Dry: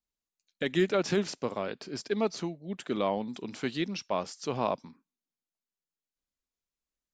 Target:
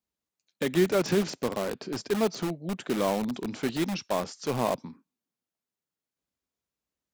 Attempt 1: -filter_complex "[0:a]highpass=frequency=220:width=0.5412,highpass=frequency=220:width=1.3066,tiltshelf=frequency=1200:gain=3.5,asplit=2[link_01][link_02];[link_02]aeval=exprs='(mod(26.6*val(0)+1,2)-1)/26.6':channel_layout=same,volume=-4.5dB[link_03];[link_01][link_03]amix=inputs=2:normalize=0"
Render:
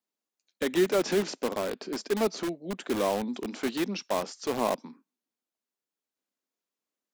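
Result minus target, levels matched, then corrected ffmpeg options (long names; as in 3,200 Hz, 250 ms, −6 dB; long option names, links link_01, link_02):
125 Hz band −6.5 dB
-filter_complex "[0:a]highpass=frequency=63:width=0.5412,highpass=frequency=63:width=1.3066,tiltshelf=frequency=1200:gain=3.5,asplit=2[link_01][link_02];[link_02]aeval=exprs='(mod(26.6*val(0)+1,2)-1)/26.6':channel_layout=same,volume=-4.5dB[link_03];[link_01][link_03]amix=inputs=2:normalize=0"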